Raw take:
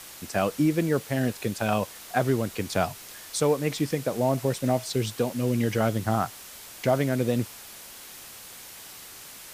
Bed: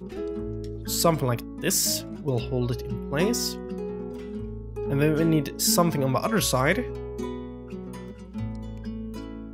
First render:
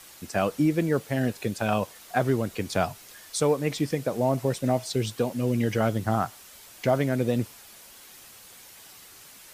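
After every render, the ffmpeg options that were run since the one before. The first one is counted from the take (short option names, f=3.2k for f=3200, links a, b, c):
-af "afftdn=nr=6:nf=-45"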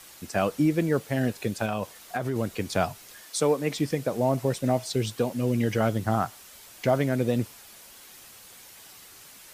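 -filter_complex "[0:a]asettb=1/sr,asplit=3[a][b][c];[a]atrim=end=1.654[d];[b]atrim=start=1.65:end=2.36,asetpts=PTS-STARTPTS,afade=t=in:d=0.004:c=qsin,afade=t=out:st=0.706:d=0.004:c=qsin,acompressor=threshold=-24dB:ratio=6:attack=3.2:release=140:knee=1:detection=peak[e];[c]atrim=start=2.356[f];[d][e]acrossfade=d=0.004:c1=hsin:c2=qsin[g];[g][f]acrossfade=d=0.004:c1=qsin:c2=hsin,asettb=1/sr,asplit=3[h][i][j];[h]atrim=end=3.214[k];[i]atrim=start=3.21:end=3.79,asetpts=PTS-STARTPTS,afade=t=in:d=0.004:c=qsin,afade=t=out:st=0.576:d=0.004:c=qsin,highpass=f=150:w=0.5412,highpass=f=150:w=1.3066[l];[j]atrim=start=3.786[m];[k][l]acrossfade=d=0.004:c1=hsin:c2=qsin[n];[n][m]acrossfade=d=0.004:c1=qsin:c2=hsin"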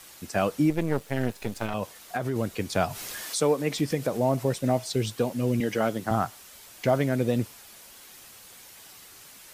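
-filter_complex "[0:a]asettb=1/sr,asplit=3[a][b][c];[a]atrim=end=0.704[d];[b]atrim=start=0.7:end=1.74,asetpts=PTS-STARTPTS,afade=t=in:d=0.004:c=qsin,afade=t=out:st=1.036:d=0.004:c=qsin,aeval=exprs='if(lt(val(0),0),0.251*val(0),val(0))':c=same[e];[c]atrim=start=1.736[f];[d][e]acrossfade=d=0.004:c1=hsin:c2=qsin[g];[g][f]acrossfade=d=0.004:c1=qsin:c2=hsin,asplit=3[h][i][j];[h]afade=t=out:st=2.88:d=0.02[k];[i]acompressor=mode=upward:threshold=-25dB:ratio=2.5:attack=3.2:release=140:knee=2.83:detection=peak,afade=t=in:st=2.88:d=0.02,afade=t=out:st=4.42:d=0.02[l];[j]afade=t=in:st=4.42:d=0.02[m];[k][l][m]amix=inputs=3:normalize=0,asettb=1/sr,asplit=3[n][o][p];[n]atrim=end=5.604[q];[o]atrim=start=5.6:end=6.11,asetpts=PTS-STARTPTS,afade=t=in:d=0.004:c=qsin,afade=t=out:st=0.506:d=0.004:c=qsin,highpass=200[r];[p]atrim=start=6.106[s];[q][r]acrossfade=d=0.004:c1=hsin:c2=qsin[t];[t][s]acrossfade=d=0.004:c1=qsin:c2=hsin"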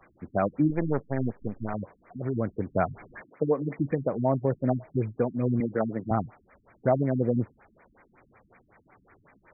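-af "afftfilt=real='re*lt(b*sr/1024,290*pow(2500/290,0.5+0.5*sin(2*PI*5.4*pts/sr)))':imag='im*lt(b*sr/1024,290*pow(2500/290,0.5+0.5*sin(2*PI*5.4*pts/sr)))':win_size=1024:overlap=0.75"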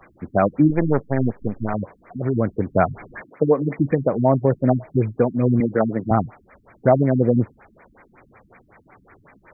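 -af "volume=8dB"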